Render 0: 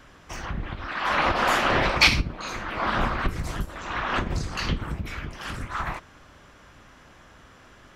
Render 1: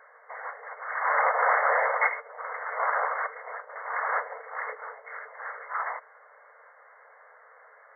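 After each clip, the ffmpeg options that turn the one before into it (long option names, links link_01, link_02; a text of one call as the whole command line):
ffmpeg -i in.wav -af "afftfilt=real='re*between(b*sr/4096,420,2200)':imag='im*between(b*sr/4096,420,2200)':win_size=4096:overlap=0.75" out.wav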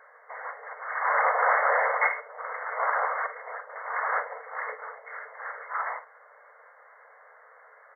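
ffmpeg -i in.wav -af "aecho=1:1:43|55:0.188|0.2" out.wav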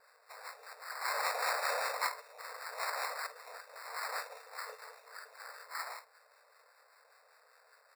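ffmpeg -i in.wav -filter_complex "[0:a]acrusher=samples=14:mix=1:aa=0.000001,acrossover=split=860[link_01][link_02];[link_01]aeval=exprs='val(0)*(1-0.5/2+0.5/2*cos(2*PI*5.1*n/s))':channel_layout=same[link_03];[link_02]aeval=exprs='val(0)*(1-0.5/2-0.5/2*cos(2*PI*5.1*n/s))':channel_layout=same[link_04];[link_03][link_04]amix=inputs=2:normalize=0,asoftclip=type=tanh:threshold=-9.5dB,volume=-8.5dB" out.wav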